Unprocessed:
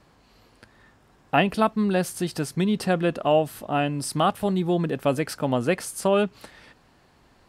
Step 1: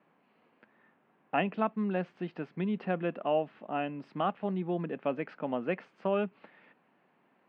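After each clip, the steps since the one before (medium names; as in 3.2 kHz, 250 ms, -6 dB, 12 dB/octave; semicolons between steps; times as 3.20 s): elliptic band-pass 180–2600 Hz, stop band 60 dB; trim -8.5 dB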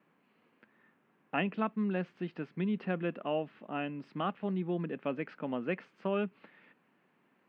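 peaking EQ 720 Hz -6.5 dB 1 oct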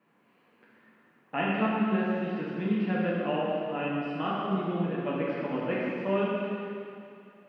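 plate-style reverb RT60 2.5 s, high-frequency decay 0.95×, DRR -7 dB; trim -1.5 dB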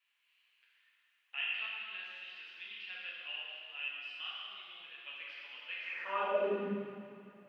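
high-pass sweep 3 kHz -> 100 Hz, 5.84–6.95 s; trim -4 dB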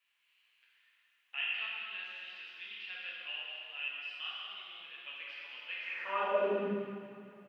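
delay 209 ms -10 dB; trim +1 dB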